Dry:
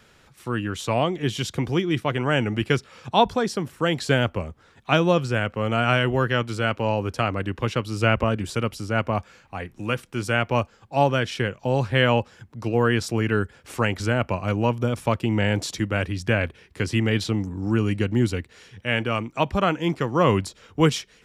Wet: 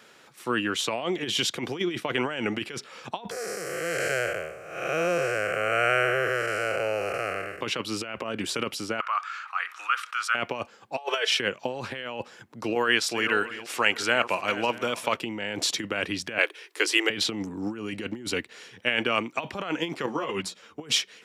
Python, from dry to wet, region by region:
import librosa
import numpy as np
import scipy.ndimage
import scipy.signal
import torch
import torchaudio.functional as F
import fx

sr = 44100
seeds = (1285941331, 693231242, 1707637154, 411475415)

y = fx.chain(x, sr, fx.spec_blur(span_ms=350.0),
    fx.high_shelf(hz=5100.0, db=11.5),
    fx.fixed_phaser(hz=940.0, stages=6), at=(3.31, 7.61))
y = fx.chain(y, sr, fx.ladder_highpass(hz=1200.0, resonance_pct=80),
    fx.high_shelf(hz=9900.0, db=-10.0),
    fx.env_flatten(amount_pct=50), at=(9.0, 10.35))
y = fx.chain(y, sr, fx.steep_highpass(hz=420.0, slope=48),
    fx.comb(ms=4.6, depth=0.99), at=(10.97, 11.4))
y = fx.chain(y, sr, fx.reverse_delay_fb(ms=320, feedback_pct=41, wet_db=-13.0),
    fx.low_shelf(hz=490.0, db=-10.0), at=(12.75, 15.17))
y = fx.chain(y, sr, fx.cheby_ripple_highpass(hz=300.0, ripple_db=3),
    fx.high_shelf(hz=4100.0, db=9.5), at=(16.38, 17.1))
y = fx.chain(y, sr, fx.hum_notches(base_hz=60, count=4),
    fx.ensemble(), at=(20.06, 20.81))
y = fx.over_compress(y, sr, threshold_db=-25.0, ratio=-0.5)
y = scipy.signal.sosfilt(scipy.signal.butter(2, 270.0, 'highpass', fs=sr, output='sos'), y)
y = fx.dynamic_eq(y, sr, hz=2900.0, q=0.85, threshold_db=-45.0, ratio=4.0, max_db=5)